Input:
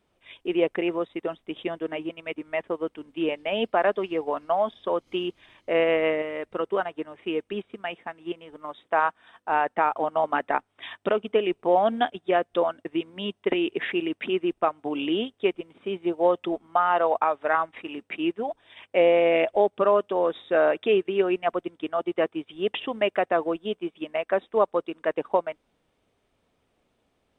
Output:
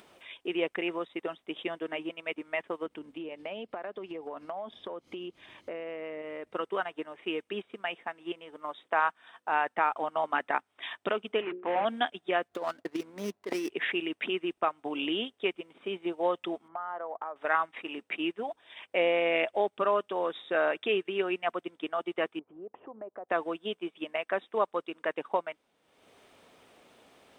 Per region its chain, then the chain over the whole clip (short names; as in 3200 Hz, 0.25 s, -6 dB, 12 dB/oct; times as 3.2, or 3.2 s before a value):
2.86–6.51 low shelf 340 Hz +11 dB + compressor 16:1, threshold -32 dBFS
11.41–11.85 CVSD 16 kbps + BPF 110–2400 Hz + notches 60/120/180/240/300/360/420/480/540/600 Hz
12.48–13.7 median filter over 15 samples + negative-ratio compressor -25 dBFS, ratio -0.5 + running maximum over 3 samples
16.68–17.36 polynomial smoothing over 41 samples + compressor 2.5:1, threshold -39 dBFS + mismatched tape noise reduction decoder only
22.39–23.29 LPF 1100 Hz 24 dB/oct + compressor 3:1, threshold -42 dBFS
whole clip: HPF 410 Hz 6 dB/oct; dynamic EQ 550 Hz, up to -6 dB, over -34 dBFS, Q 0.76; upward compressor, threshold -45 dBFS